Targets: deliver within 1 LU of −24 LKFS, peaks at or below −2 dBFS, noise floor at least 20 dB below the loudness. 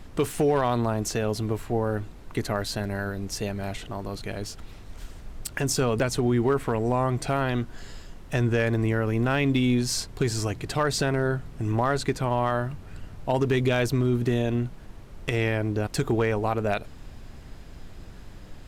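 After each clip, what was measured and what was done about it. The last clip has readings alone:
share of clipped samples 0.3%; peaks flattened at −15.0 dBFS; background noise floor −44 dBFS; target noise floor −47 dBFS; integrated loudness −26.5 LKFS; sample peak −15.0 dBFS; target loudness −24.0 LKFS
→ clipped peaks rebuilt −15 dBFS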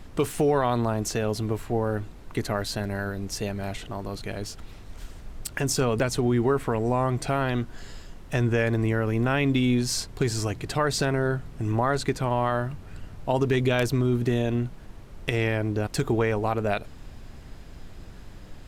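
share of clipped samples 0.0%; background noise floor −44 dBFS; target noise floor −47 dBFS
→ noise reduction from a noise print 6 dB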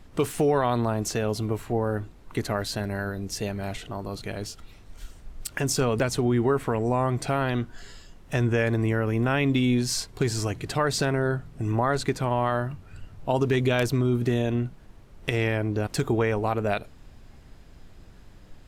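background noise floor −50 dBFS; integrated loudness −26.5 LKFS; sample peak −8.0 dBFS; target loudness −24.0 LKFS
→ level +2.5 dB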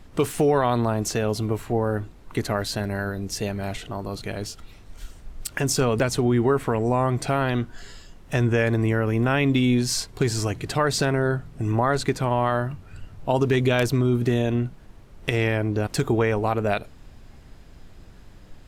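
integrated loudness −24.0 LKFS; sample peak −5.5 dBFS; background noise floor −47 dBFS

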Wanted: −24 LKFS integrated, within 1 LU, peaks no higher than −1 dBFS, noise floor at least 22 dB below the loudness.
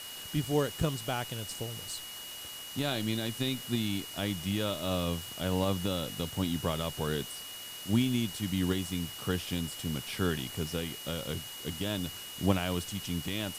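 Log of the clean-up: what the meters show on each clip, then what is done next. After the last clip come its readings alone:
interfering tone 2,900 Hz; level of the tone −44 dBFS; background noise floor −44 dBFS; target noise floor −55 dBFS; integrated loudness −33.0 LKFS; sample peak −13.0 dBFS; target loudness −24.0 LKFS
→ notch filter 2,900 Hz, Q 30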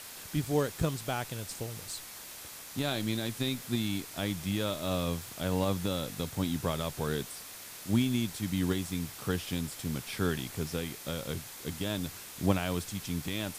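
interfering tone none found; background noise floor −46 dBFS; target noise floor −56 dBFS
→ broadband denoise 10 dB, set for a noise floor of −46 dBFS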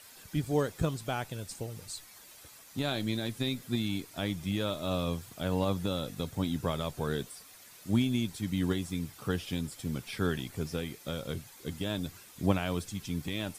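background noise floor −54 dBFS; target noise floor −56 dBFS
→ broadband denoise 6 dB, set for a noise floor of −54 dBFS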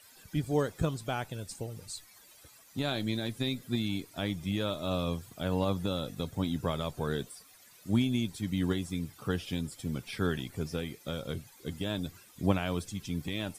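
background noise floor −58 dBFS; integrated loudness −34.0 LKFS; sample peak −13.0 dBFS; target loudness −24.0 LKFS
→ level +10 dB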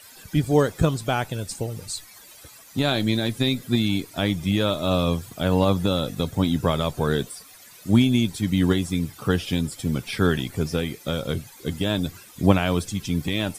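integrated loudness −24.0 LKFS; sample peak −3.0 dBFS; background noise floor −48 dBFS

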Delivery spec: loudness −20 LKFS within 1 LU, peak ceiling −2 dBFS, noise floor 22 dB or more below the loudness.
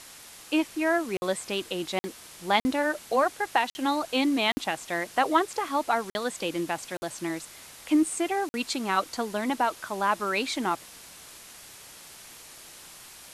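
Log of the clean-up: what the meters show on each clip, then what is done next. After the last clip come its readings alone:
number of dropouts 8; longest dropout 50 ms; background noise floor −48 dBFS; target noise floor −50 dBFS; integrated loudness −28.0 LKFS; sample peak −8.5 dBFS; target loudness −20.0 LKFS
→ repair the gap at 0:01.17/0:01.99/0:02.60/0:03.70/0:04.52/0:06.10/0:06.97/0:08.49, 50 ms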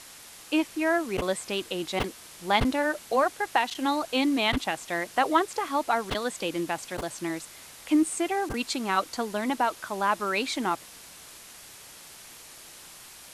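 number of dropouts 0; background noise floor −48 dBFS; target noise floor −50 dBFS
→ noise reduction from a noise print 6 dB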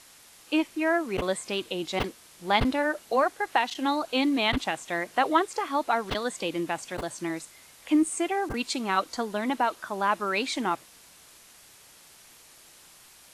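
background noise floor −54 dBFS; integrated loudness −27.5 LKFS; sample peak −8.5 dBFS; target loudness −20.0 LKFS
→ level +7.5 dB
brickwall limiter −2 dBFS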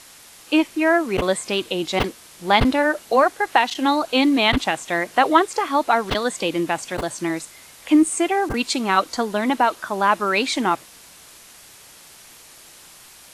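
integrated loudness −20.5 LKFS; sample peak −2.0 dBFS; background noise floor −46 dBFS

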